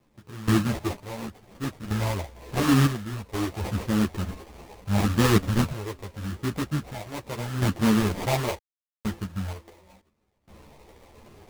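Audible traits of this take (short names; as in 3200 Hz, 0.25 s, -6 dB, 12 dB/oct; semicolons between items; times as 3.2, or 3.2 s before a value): random-step tremolo 2.1 Hz, depth 100%; phasing stages 4, 0.8 Hz, lowest notch 200–1100 Hz; aliases and images of a low sample rate 1500 Hz, jitter 20%; a shimmering, thickened sound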